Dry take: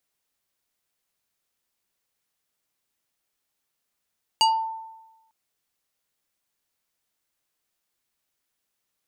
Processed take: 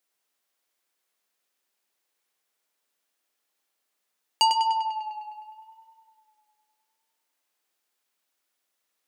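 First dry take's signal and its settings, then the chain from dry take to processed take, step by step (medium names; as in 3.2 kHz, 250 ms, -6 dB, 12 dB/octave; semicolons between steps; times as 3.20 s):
FM tone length 0.90 s, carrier 893 Hz, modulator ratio 4.22, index 1.5, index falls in 0.31 s exponential, decay 1.06 s, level -13.5 dB
high-pass 280 Hz 12 dB/octave; on a send: tape echo 101 ms, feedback 76%, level -4 dB, low-pass 5.2 kHz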